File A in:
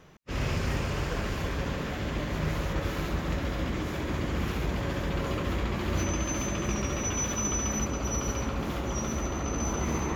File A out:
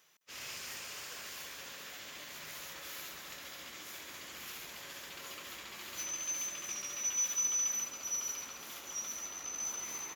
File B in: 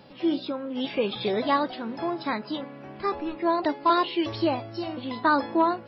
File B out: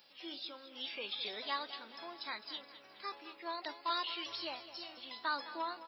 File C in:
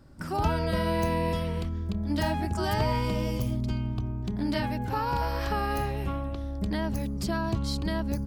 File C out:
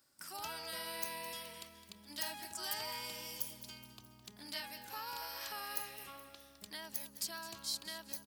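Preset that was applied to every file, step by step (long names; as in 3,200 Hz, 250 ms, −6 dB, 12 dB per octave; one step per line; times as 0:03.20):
first difference
repeating echo 211 ms, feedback 52%, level −14 dB
level +1.5 dB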